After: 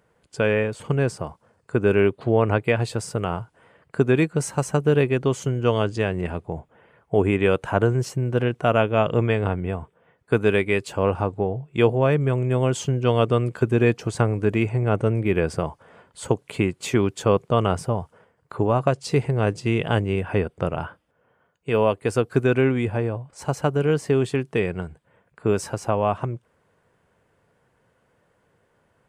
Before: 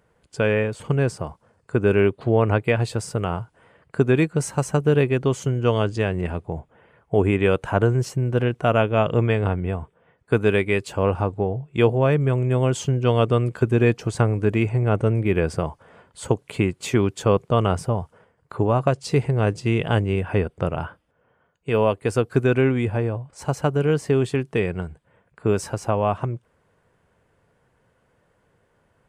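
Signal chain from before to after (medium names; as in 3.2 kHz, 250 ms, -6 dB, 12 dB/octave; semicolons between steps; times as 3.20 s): bass shelf 67 Hz -8 dB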